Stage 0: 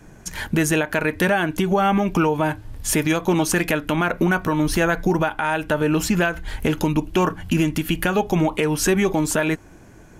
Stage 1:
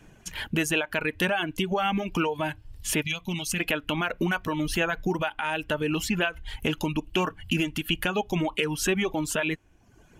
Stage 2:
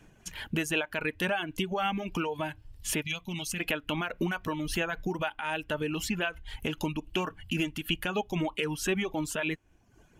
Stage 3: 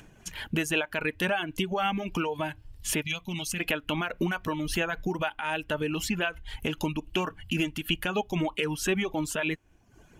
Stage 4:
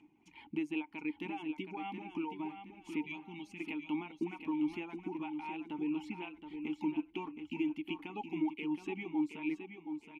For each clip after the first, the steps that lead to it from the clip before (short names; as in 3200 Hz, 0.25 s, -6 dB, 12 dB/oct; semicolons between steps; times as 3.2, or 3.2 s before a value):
spectral gain 3.03–3.59, 240–1900 Hz -11 dB; reverb removal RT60 0.84 s; bell 2900 Hz +10.5 dB 0.58 oct; gain -7 dB
tremolo 3.8 Hz, depth 32%; gain -3 dB
upward compressor, threshold -51 dBFS; gain +2 dB
vowel filter u; feedback echo 0.721 s, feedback 32%, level -8 dB